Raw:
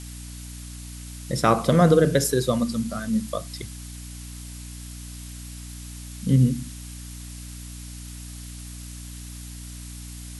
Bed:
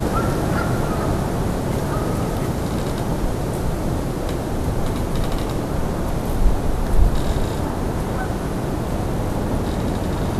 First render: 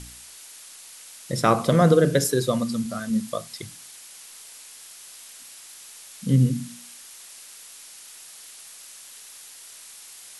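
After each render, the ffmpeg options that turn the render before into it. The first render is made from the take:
-af "bandreject=f=60:t=h:w=4,bandreject=f=120:t=h:w=4,bandreject=f=180:t=h:w=4,bandreject=f=240:t=h:w=4,bandreject=f=300:t=h:w=4"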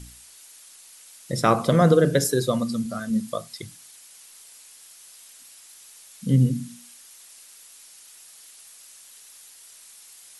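-af "afftdn=nr=6:nf=-45"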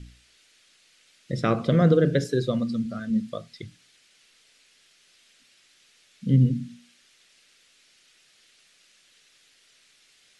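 -af "lowpass=3300,equalizer=f=920:t=o:w=0.95:g=-13"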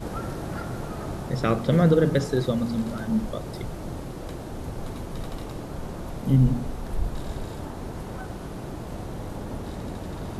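-filter_complex "[1:a]volume=0.251[s0];[0:a][s0]amix=inputs=2:normalize=0"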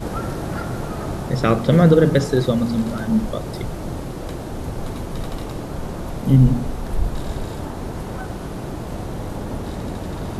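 -af "volume=2"

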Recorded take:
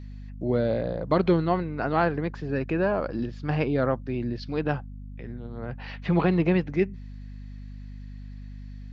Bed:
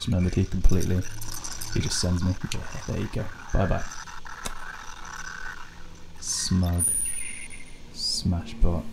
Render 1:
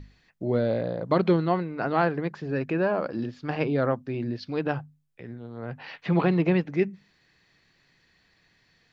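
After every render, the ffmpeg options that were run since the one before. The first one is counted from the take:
-af "bandreject=f=50:t=h:w=6,bandreject=f=100:t=h:w=6,bandreject=f=150:t=h:w=6,bandreject=f=200:t=h:w=6,bandreject=f=250:t=h:w=6"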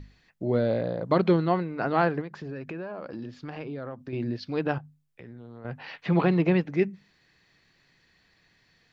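-filter_complex "[0:a]asettb=1/sr,asplit=3[s0][s1][s2];[s0]atrim=end=2.214[s3];[s1]atrim=start=2.21:end=4.13,asetpts=PTS-STARTPTS,afade=t=in:d=0.004:c=qsin,afade=t=out:st=1.916:d=0.004:c=qsin,acompressor=threshold=0.0224:ratio=6:attack=3.2:release=140:knee=1:detection=peak[s4];[s2]atrim=start=4.126[s5];[s3][s4]acrossfade=d=0.004:c1=hsin:c2=qsin[s6];[s6][s5]acrossfade=d=0.004:c1=qsin:c2=hsin,asettb=1/sr,asplit=3[s7][s8][s9];[s7]atrim=end=4.784[s10];[s8]atrim=start=4.78:end=5.65,asetpts=PTS-STARTPTS,afade=t=in:d=0.004:c=qsin,afade=t=out:st=0.866:d=0.004:c=qsin,acompressor=threshold=0.01:ratio=6:attack=3.2:release=140:knee=1:detection=peak[s11];[s9]atrim=start=5.646[s12];[s10][s11]acrossfade=d=0.004:c1=hsin:c2=qsin[s13];[s13][s12]acrossfade=d=0.004:c1=qsin:c2=hsin"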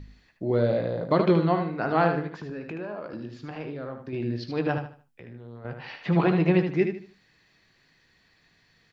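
-filter_complex "[0:a]asplit=2[s0][s1];[s1]adelay=19,volume=0.251[s2];[s0][s2]amix=inputs=2:normalize=0,aecho=1:1:76|152|228|304:0.447|0.134|0.0402|0.0121"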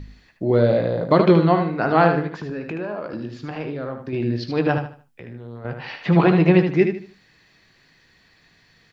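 -af "volume=2.11"

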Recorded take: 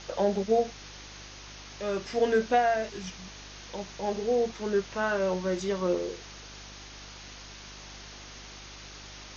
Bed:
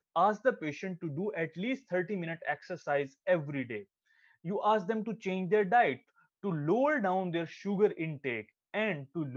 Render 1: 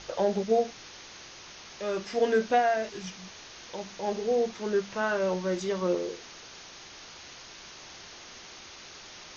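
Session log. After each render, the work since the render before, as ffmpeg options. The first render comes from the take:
-af "bandreject=f=50:t=h:w=4,bandreject=f=100:t=h:w=4,bandreject=f=150:t=h:w=4,bandreject=f=200:t=h:w=4,bandreject=f=250:t=h:w=4,bandreject=f=300:t=h:w=4"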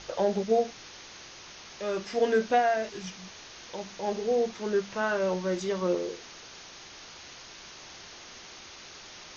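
-af anull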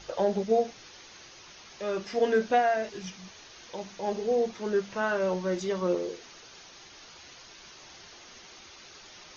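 -af "afftdn=nr=6:nf=-48"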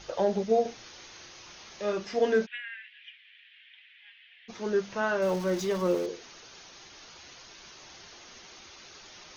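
-filter_complex "[0:a]asettb=1/sr,asplit=3[s0][s1][s2];[s0]atrim=end=0.624[s3];[s1]atrim=start=0.62:end=1.93,asetpts=PTS-STARTPTS,afade=t=in:d=0.004:c=qsin,afade=t=out:st=1.306:d=0.004:c=qsin,asplit=2[s4][s5];[s5]adelay=34,volume=0.562[s6];[s4][s6]amix=inputs=2:normalize=0,atrim=end_sample=57771[s7];[s2]atrim=start=1.926[s8];[s3][s7]acrossfade=d=0.004:c1=hsin:c2=qsin[s9];[s9][s8]acrossfade=d=0.004:c1=qsin:c2=hsin,asplit=3[s10][s11][s12];[s10]afade=t=out:st=2.45:d=0.02[s13];[s11]asuperpass=centerf=2400:order=8:qfactor=1.5,afade=t=in:st=2.45:d=0.02,afade=t=out:st=4.48:d=0.02[s14];[s12]afade=t=in:st=4.48:d=0.02[s15];[s13][s14][s15]amix=inputs=3:normalize=0,asettb=1/sr,asplit=3[s16][s17][s18];[s16]atrim=end=5.224[s19];[s17]atrim=start=5.22:end=6.06,asetpts=PTS-STARTPTS,afade=t=in:d=0.004:c=qsin,afade=t=out:st=0.836:d=0.004:c=qsin,aeval=exprs='val(0)+0.5*0.0126*sgn(val(0))':c=same[s20];[s18]atrim=start=6.056[s21];[s19][s20]acrossfade=d=0.004:c1=hsin:c2=qsin[s22];[s22][s21]acrossfade=d=0.004:c1=qsin:c2=hsin"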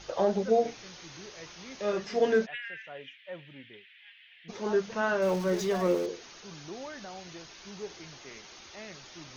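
-filter_complex "[1:a]volume=0.2[s0];[0:a][s0]amix=inputs=2:normalize=0"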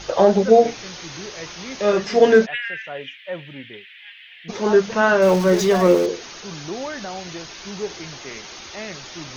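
-af "volume=3.98"

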